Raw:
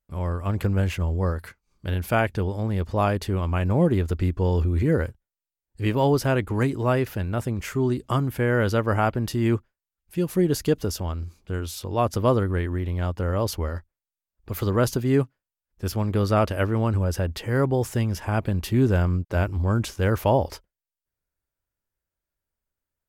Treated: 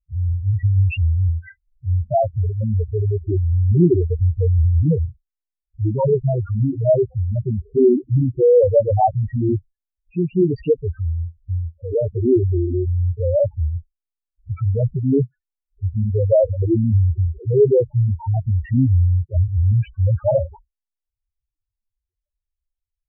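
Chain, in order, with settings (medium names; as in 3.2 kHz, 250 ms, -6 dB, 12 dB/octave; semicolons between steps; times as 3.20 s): LFO low-pass sine 0.22 Hz 350–3000 Hz; loudest bins only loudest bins 2; trim +8.5 dB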